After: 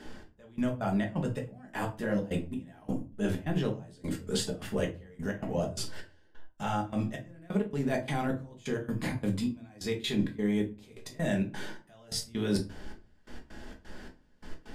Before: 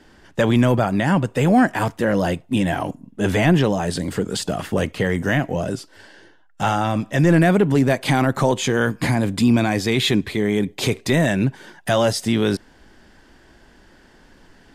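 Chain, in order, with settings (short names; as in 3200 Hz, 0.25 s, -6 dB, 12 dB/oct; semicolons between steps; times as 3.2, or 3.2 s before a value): reverse; compressor 12:1, threshold -30 dBFS, peak gain reduction 19 dB; reverse; step gate "xx...x.xx." 130 bpm -24 dB; shoebox room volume 150 m³, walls furnished, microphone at 1.4 m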